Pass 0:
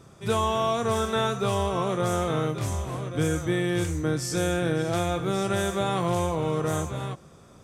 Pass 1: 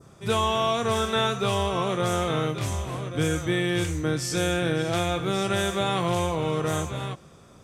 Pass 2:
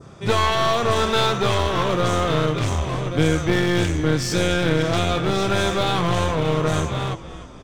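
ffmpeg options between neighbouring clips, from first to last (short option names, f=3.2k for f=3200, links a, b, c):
-af "adynamicequalizer=threshold=0.00562:dfrequency=2900:dqfactor=0.96:tfrequency=2900:tqfactor=0.96:attack=5:release=100:ratio=0.375:range=3:mode=boostabove:tftype=bell"
-filter_complex "[0:a]lowpass=5.9k,asplit=5[a][b][c][d][e];[b]adelay=308,afreqshift=-68,volume=-16dB[f];[c]adelay=616,afreqshift=-136,volume=-23.5dB[g];[d]adelay=924,afreqshift=-204,volume=-31.1dB[h];[e]adelay=1232,afreqshift=-272,volume=-38.6dB[i];[a][f][g][h][i]amix=inputs=5:normalize=0,aeval=exprs='clip(val(0),-1,0.0316)':c=same,volume=8dB"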